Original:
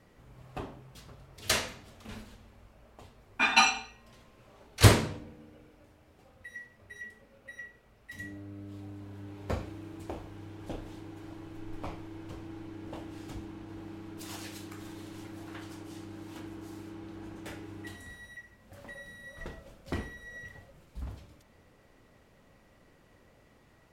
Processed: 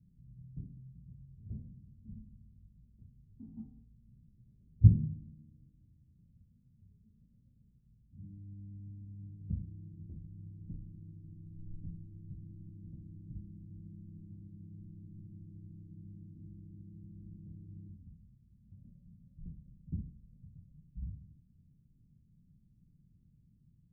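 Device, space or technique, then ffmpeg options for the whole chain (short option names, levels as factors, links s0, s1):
the neighbour's flat through the wall: -af "lowpass=f=190:w=0.5412,lowpass=f=190:w=1.3066,equalizer=f=160:t=o:w=0.76:g=7.5,volume=0.75"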